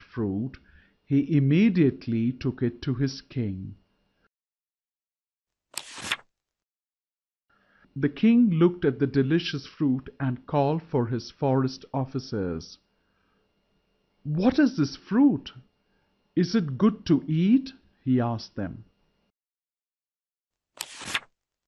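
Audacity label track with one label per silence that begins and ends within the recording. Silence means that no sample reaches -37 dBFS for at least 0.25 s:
0.550000	1.100000	silence
3.720000	5.740000	silence
6.160000	7.960000	silence
12.740000	14.260000	silence
15.490000	16.370000	silence
17.700000	18.060000	silence
18.800000	20.770000	silence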